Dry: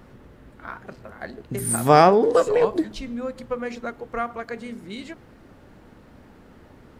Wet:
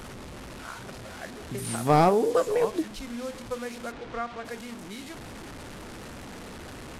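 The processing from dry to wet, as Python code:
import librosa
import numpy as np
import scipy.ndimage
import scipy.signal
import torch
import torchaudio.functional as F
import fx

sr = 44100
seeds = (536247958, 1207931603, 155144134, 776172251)

y = fx.delta_mod(x, sr, bps=64000, step_db=-30.0)
y = fx.lowpass(y, sr, hz=4000.0, slope=12, at=(3.91, 4.44), fade=0.02)
y = y * librosa.db_to_amplitude(-5.5)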